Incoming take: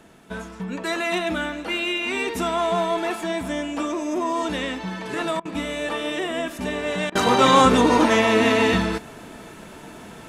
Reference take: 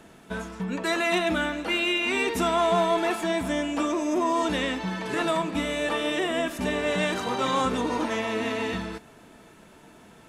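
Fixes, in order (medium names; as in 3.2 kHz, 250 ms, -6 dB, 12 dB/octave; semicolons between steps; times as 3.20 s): interpolate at 5.40/7.10 s, 51 ms; gain correction -10.5 dB, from 7.12 s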